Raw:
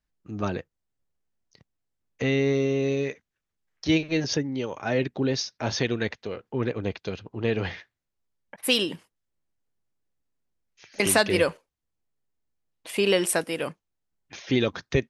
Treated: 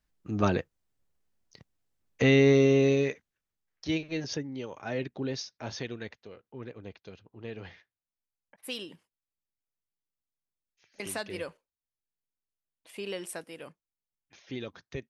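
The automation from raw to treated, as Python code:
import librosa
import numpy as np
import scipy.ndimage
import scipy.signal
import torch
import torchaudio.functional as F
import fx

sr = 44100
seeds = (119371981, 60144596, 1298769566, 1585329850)

y = fx.gain(x, sr, db=fx.line((2.77, 3.0), (3.92, -8.0), (5.34, -8.0), (6.46, -15.0)))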